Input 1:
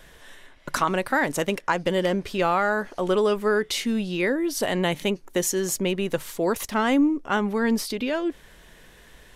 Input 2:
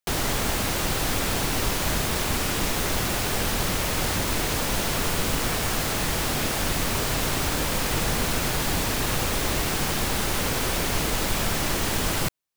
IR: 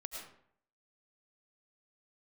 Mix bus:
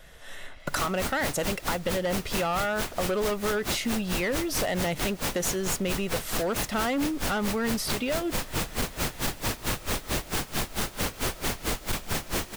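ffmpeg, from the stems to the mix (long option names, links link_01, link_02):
-filter_complex "[0:a]aecho=1:1:1.5:0.38,volume=-2.5dB[link_01];[1:a]aeval=exprs='val(0)*pow(10,-29*(0.5-0.5*cos(2*PI*4.5*n/s))/20)':channel_layout=same,adelay=600,volume=-1dB,asplit=2[link_02][link_03];[link_03]volume=-17dB[link_04];[2:a]atrim=start_sample=2205[link_05];[link_04][link_05]afir=irnorm=-1:irlink=0[link_06];[link_01][link_02][link_06]amix=inputs=3:normalize=0,dynaudnorm=framelen=210:gausssize=3:maxgain=10dB,volume=13.5dB,asoftclip=hard,volume=-13.5dB,acompressor=threshold=-27dB:ratio=4"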